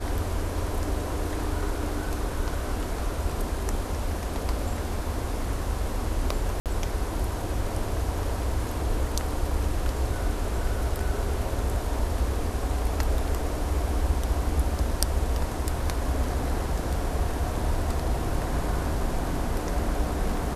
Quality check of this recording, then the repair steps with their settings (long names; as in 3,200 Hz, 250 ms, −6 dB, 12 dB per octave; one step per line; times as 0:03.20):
0:06.60–0:06.66: drop-out 58 ms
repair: repair the gap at 0:06.60, 58 ms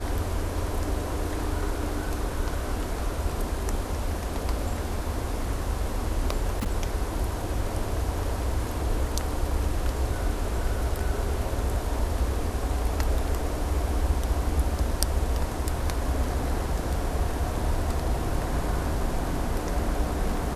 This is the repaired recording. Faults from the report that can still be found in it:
none of them is left